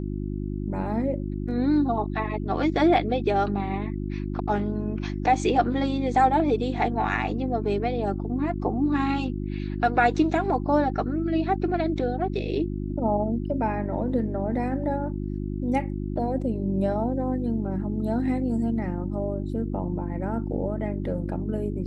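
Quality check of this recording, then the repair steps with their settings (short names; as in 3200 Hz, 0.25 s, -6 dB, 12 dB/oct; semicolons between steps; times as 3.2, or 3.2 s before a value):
hum 50 Hz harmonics 7 -30 dBFS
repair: de-hum 50 Hz, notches 7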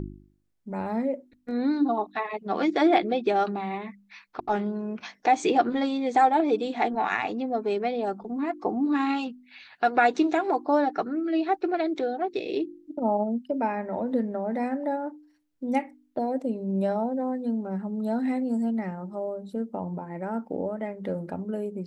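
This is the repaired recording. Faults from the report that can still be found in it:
none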